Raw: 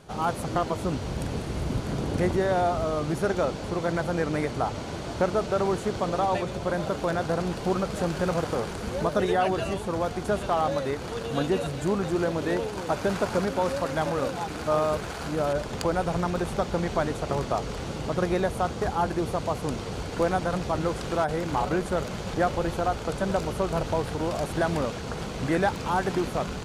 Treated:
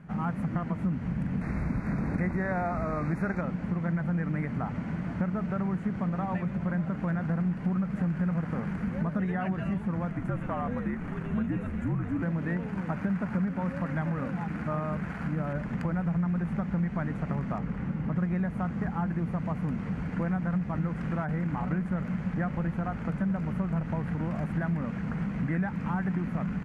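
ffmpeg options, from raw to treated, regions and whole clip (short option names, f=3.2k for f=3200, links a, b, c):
-filter_complex "[0:a]asettb=1/sr,asplit=3[a][b][c];[a]atrim=end=1.414[d];[b]atrim=start=1.41:end=3.41,asetpts=PTS-STARTPTS,afade=t=in:d=0.004:c=qsin,afade=t=out:st=1.996:d=0.004:c=qsin,equalizer=f=160:t=o:w=1.6:g=-8.5,acontrast=65,asuperstop=centerf=3100:order=8:qfactor=3[e];[c]atrim=start=3.406[f];[d][e]acrossfade=d=0.004:c1=hsin:c2=qsin[g];[g][f]acrossfade=d=0.004:c1=qsin:c2=hsin,asettb=1/sr,asplit=3[h][i][j];[h]atrim=end=10.114[k];[i]atrim=start=10.11:end=12.22,asetpts=PTS-STARTPTS,afade=t=in:d=0.004:c=qsin,afade=t=out:st=2.106:d=0.004:c=qsin,afreqshift=-65,equalizer=f=4.6k:w=1.6:g=-5.5[l];[j]atrim=start=12.216[m];[k][l]acrossfade=d=0.004:c1=hsin:c2=qsin[n];[n][m]acrossfade=d=0.004:c1=qsin:c2=hsin,asettb=1/sr,asplit=3[o][p][q];[o]atrim=end=17.584[r];[p]atrim=start=17.58:end=18.16,asetpts=PTS-STARTPTS,afade=t=in:d=0.004:c=qsin,afade=t=out:st=0.576:d=0.004:c=qsin,highshelf=f=3.1k:g=-8,bandreject=f=660:w=13[s];[q]atrim=start=18.156[t];[r][s]acrossfade=d=0.004:c1=hsin:c2=qsin[u];[u][t]acrossfade=d=0.004:c1=qsin:c2=hsin,firequalizer=gain_entry='entry(100,0);entry(180,14);entry(370,-8);entry(1900,4);entry(3600,-19)':delay=0.05:min_phase=1,acompressor=threshold=-25dB:ratio=3,volume=-2.5dB"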